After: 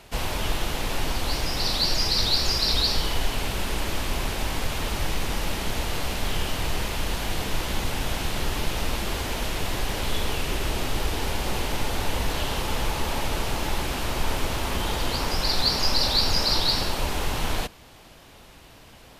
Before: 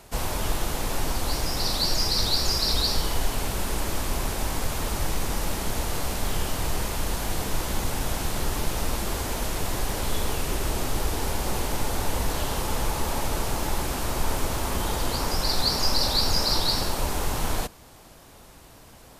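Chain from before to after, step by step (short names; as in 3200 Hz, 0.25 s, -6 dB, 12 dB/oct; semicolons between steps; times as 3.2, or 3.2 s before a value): EQ curve 1200 Hz 0 dB, 2900 Hz +6 dB, 8000 Hz -4 dB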